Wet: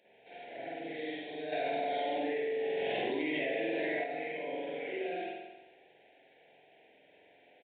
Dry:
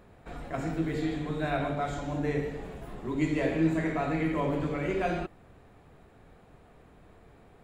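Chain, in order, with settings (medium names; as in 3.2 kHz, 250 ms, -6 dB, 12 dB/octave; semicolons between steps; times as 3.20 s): high-pass 860 Hz 12 dB/octave; peak limiter -32 dBFS, peak gain reduction 10.5 dB; dynamic bell 2.6 kHz, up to -5 dB, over -55 dBFS, Q 1.3; Butterworth band-stop 1.2 kHz, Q 0.76; spring tank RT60 1.1 s, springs 45 ms, chirp 60 ms, DRR -7.5 dB; resampled via 8 kHz; 1.52–4.04 s: level flattener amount 100%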